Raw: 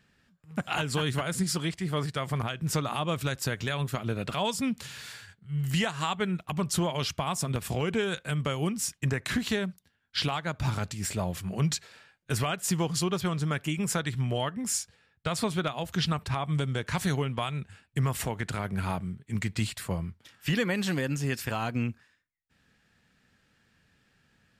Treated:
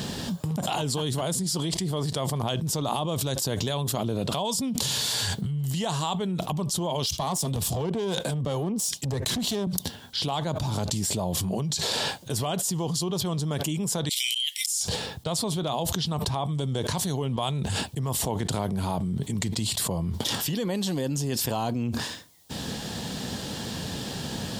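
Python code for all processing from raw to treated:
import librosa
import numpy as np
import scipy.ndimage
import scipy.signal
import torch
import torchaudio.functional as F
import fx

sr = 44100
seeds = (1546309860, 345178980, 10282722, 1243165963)

y = fx.chain(x, sr, fx.tube_stage(drive_db=27.0, bias=0.5),
    fx.band_widen(depth_pct=100), at=(7.06, 9.67))
y = fx.chain(y, sr, fx.steep_highpass(hz=2100.0, slope=96),
    fx.high_shelf(hz=7100.0, db=4.5),
    fx.auto_swell(attack_ms=266.0), at=(14.09, 14.81))
y = fx.highpass(y, sr, hz=140.0, slope=6)
y = fx.band_shelf(y, sr, hz=1800.0, db=-13.5, octaves=1.3)
y = fx.env_flatten(y, sr, amount_pct=100)
y = y * 10.0 ** (-2.5 / 20.0)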